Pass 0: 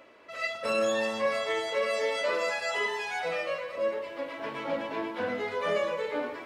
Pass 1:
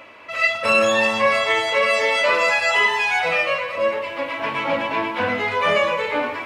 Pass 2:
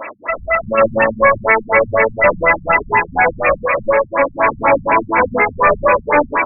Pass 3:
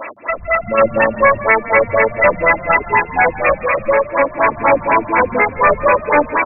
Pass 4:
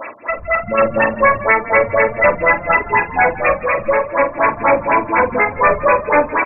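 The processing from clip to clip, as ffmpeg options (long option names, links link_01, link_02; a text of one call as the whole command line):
ffmpeg -i in.wav -af "equalizer=frequency=100:width_type=o:width=0.67:gain=7,equalizer=frequency=400:width_type=o:width=0.67:gain=-5,equalizer=frequency=1000:width_type=o:width=0.67:gain=5,equalizer=frequency=2500:width_type=o:width=0.67:gain=8,volume=9dB" out.wav
ffmpeg -i in.wav -filter_complex "[0:a]asplit=2[link_01][link_02];[link_02]highpass=frequency=720:poles=1,volume=22dB,asoftclip=type=tanh:threshold=-5.5dB[link_03];[link_01][link_03]amix=inputs=2:normalize=0,lowpass=frequency=3500:poles=1,volume=-6dB,afftfilt=real='re*lt(b*sr/1024,200*pow(2700/200,0.5+0.5*sin(2*PI*4.1*pts/sr)))':imag='im*lt(b*sr/1024,200*pow(2700/200,0.5+0.5*sin(2*PI*4.1*pts/sr)))':win_size=1024:overlap=0.75,volume=4dB" out.wav
ffmpeg -i in.wav -filter_complex "[0:a]asplit=4[link_01][link_02][link_03][link_04];[link_02]adelay=165,afreqshift=33,volume=-17.5dB[link_05];[link_03]adelay=330,afreqshift=66,volume=-25.2dB[link_06];[link_04]adelay=495,afreqshift=99,volume=-33dB[link_07];[link_01][link_05][link_06][link_07]amix=inputs=4:normalize=0" out.wav
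ffmpeg -i in.wav -filter_complex "[0:a]asplit=2[link_01][link_02];[link_02]adelay=46,volume=-11.5dB[link_03];[link_01][link_03]amix=inputs=2:normalize=0,volume=-1dB" out.wav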